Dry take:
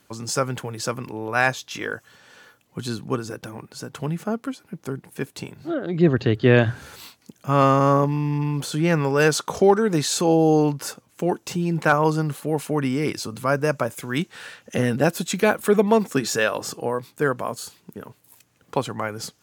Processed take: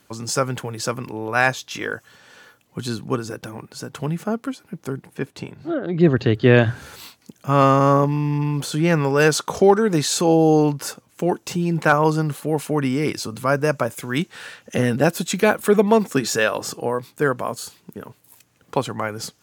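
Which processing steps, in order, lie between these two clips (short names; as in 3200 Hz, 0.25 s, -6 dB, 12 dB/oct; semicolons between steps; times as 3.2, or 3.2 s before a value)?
5.07–6 LPF 3300 Hz 6 dB/oct; gain +2 dB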